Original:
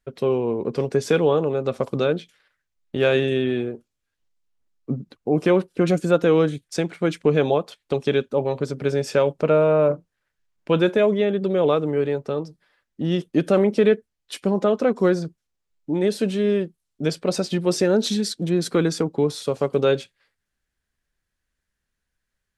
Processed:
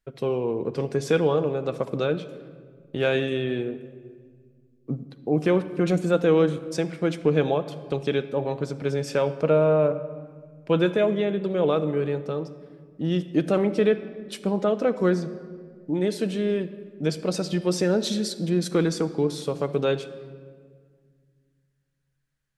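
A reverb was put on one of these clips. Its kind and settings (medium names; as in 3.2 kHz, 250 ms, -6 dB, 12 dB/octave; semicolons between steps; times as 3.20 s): simulated room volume 2700 m³, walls mixed, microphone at 0.62 m; trim -3.5 dB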